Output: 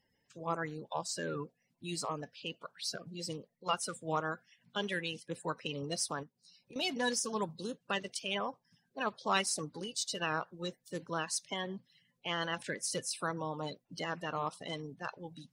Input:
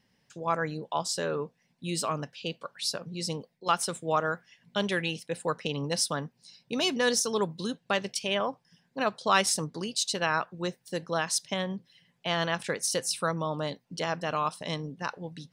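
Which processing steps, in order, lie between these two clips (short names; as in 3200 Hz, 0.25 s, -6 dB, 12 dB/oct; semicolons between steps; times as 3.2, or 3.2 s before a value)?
bin magnitudes rounded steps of 30 dB; 6.23–6.76 compressor 3:1, threshold -50 dBFS, peak gain reduction 15 dB; gain -6.5 dB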